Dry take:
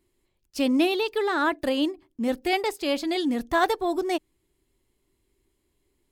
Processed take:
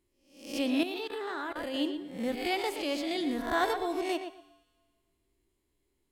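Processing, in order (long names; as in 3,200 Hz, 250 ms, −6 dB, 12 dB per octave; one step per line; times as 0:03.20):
peak hold with a rise ahead of every peak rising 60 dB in 0.54 s
tuned comb filter 97 Hz, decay 1.6 s, harmonics odd, mix 60%
tape delay 118 ms, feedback 20%, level −7.5 dB, low-pass 3,200 Hz
0:00.83–0:01.74: output level in coarse steps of 18 dB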